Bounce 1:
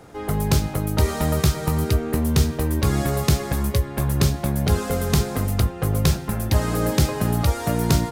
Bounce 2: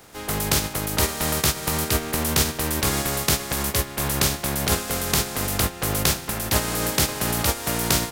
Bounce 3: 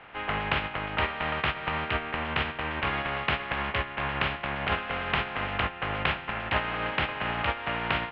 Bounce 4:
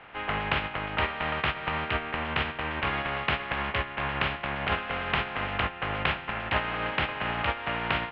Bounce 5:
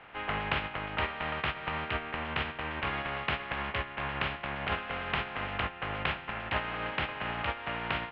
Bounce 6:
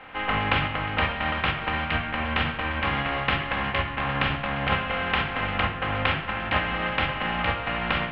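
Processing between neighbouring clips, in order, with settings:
spectral contrast lowered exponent 0.49; gain -3 dB
air absorption 320 m; vocal rider 0.5 s; EQ curve 390 Hz 0 dB, 770 Hz +9 dB, 1500 Hz +12 dB, 2900 Hz +15 dB, 6800 Hz -24 dB; gain -9 dB
nothing audible
vocal rider 2 s; gain -4.5 dB
shoebox room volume 2600 m³, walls furnished, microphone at 2.1 m; gain +6 dB

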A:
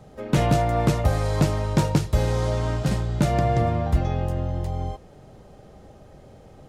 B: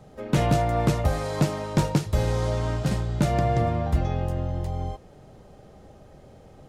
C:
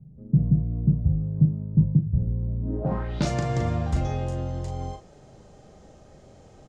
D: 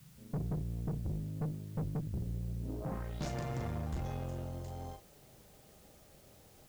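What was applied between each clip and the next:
de-hum 51.58 Hz, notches 2; gain -1.5 dB
doubler 38 ms -6 dB; low-pass sweep 160 Hz -> 7000 Hz, 2.6–3.29; gain -2.5 dB
tube stage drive 25 dB, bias 0.65; added noise white -57 dBFS; gain -7.5 dB

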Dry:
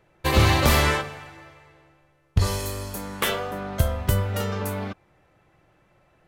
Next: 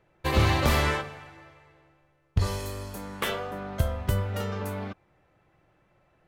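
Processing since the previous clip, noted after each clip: high shelf 5000 Hz -6 dB; gain -4 dB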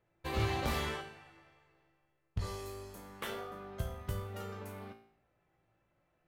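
resonator 56 Hz, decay 0.6 s, harmonics all, mix 80%; gain -3 dB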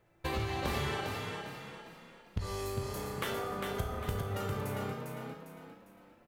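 compressor 5:1, threshold -41 dBFS, peak gain reduction 12.5 dB; on a send: frequency-shifting echo 0.402 s, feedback 39%, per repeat +32 Hz, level -4.5 dB; on the sum: gain +8.5 dB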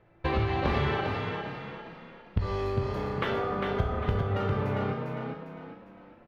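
air absorption 290 m; gain +8 dB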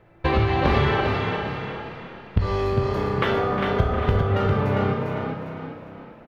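feedback echo 0.357 s, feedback 43%, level -12 dB; gain +7 dB

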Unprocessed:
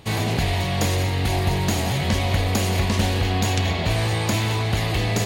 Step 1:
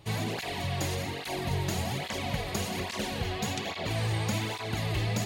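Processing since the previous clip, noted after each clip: de-hum 93.03 Hz, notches 3; tape flanging out of phase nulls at 1.2 Hz, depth 4.5 ms; gain -5.5 dB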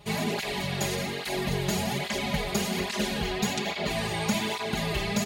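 comb 4.9 ms, depth 92%; gain +1.5 dB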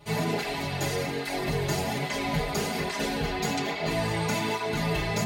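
FDN reverb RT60 0.31 s, low-frequency decay 1×, high-frequency decay 0.4×, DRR -2.5 dB; gain -3.5 dB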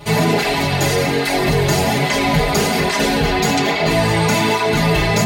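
in parallel at +3 dB: limiter -26.5 dBFS, peak gain reduction 11 dB; on the sum: crackle 95/s -49 dBFS; gain +8 dB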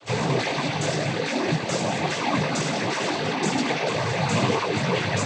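chorus 1 Hz, delay 16 ms, depth 2.5 ms; noise vocoder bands 16; gain -4.5 dB

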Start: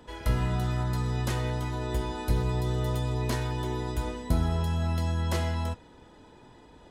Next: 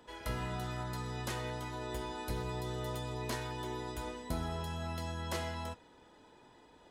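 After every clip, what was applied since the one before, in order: low shelf 220 Hz -10.5 dB; gain -4.5 dB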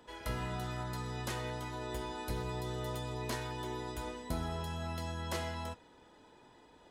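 nothing audible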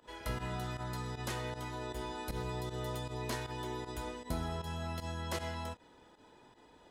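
pump 156 bpm, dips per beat 1, -14 dB, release 74 ms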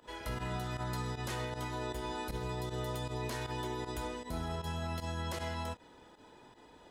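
limiter -31.5 dBFS, peak gain reduction 8 dB; gain +3 dB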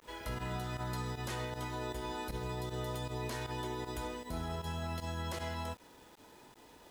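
requantised 10-bit, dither none; gain -1 dB

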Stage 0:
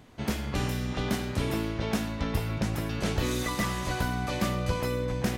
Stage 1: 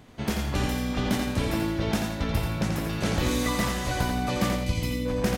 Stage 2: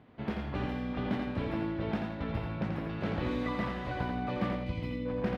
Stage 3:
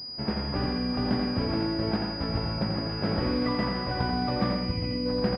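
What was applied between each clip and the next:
spectral gain 4.56–5.06, 350–1900 Hz -12 dB; feedback echo 85 ms, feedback 36%, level -5 dB; gain +2 dB
HPF 110 Hz 6 dB/oct; air absorption 400 m; gain -4.5 dB
echo 0.125 s -9 dB; pulse-width modulation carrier 4900 Hz; gain +5 dB

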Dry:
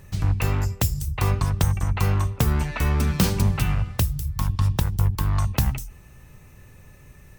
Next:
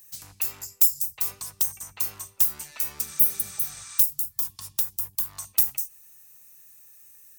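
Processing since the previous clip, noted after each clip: RIAA curve recording; spectral repair 3.1–3.97, 870–8900 Hz before; tone controls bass -2 dB, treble +12 dB; gain -17 dB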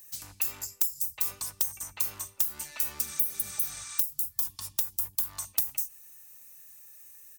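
comb 3.4 ms, depth 30%; compressor 10:1, threshold -23 dBFS, peak gain reduction 12 dB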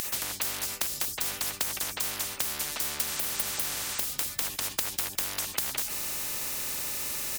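in parallel at -5 dB: hard clip -23.5 dBFS, distortion -8 dB; on the sum: maximiser +9.5 dB; spectral compressor 10:1; gain -8.5 dB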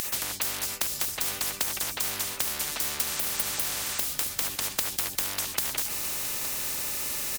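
echo 0.866 s -12 dB; gain +1.5 dB

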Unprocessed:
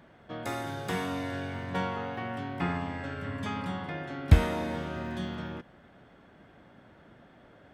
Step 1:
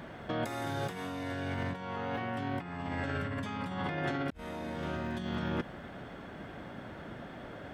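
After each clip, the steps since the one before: negative-ratio compressor -41 dBFS, ratio -1; gain +3 dB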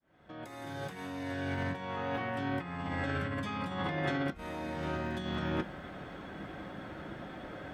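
opening faded in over 1.55 s; on a send at -4.5 dB: reverb RT60 0.20 s, pre-delay 3 ms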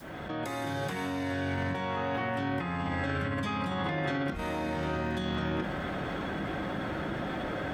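fast leveller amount 70%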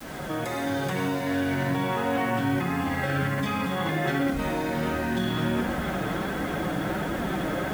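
on a send: darkening echo 94 ms, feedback 63%, low-pass 1100 Hz, level -6 dB; on the sum: requantised 8-bit, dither none; flange 1.4 Hz, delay 3.6 ms, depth 3 ms, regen -34%; gain +8 dB

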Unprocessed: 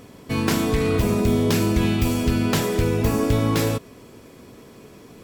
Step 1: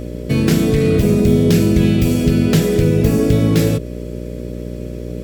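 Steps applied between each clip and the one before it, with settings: fifteen-band EQ 160 Hz +11 dB, 400 Hz +5 dB, 1000 Hz -11 dB; in parallel at -0.5 dB: compressor, threshold -22 dBFS, peak gain reduction 11 dB; on the sum: buzz 60 Hz, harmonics 10, -27 dBFS -3 dB/oct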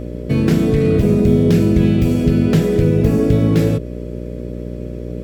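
high shelf 2900 Hz -10 dB

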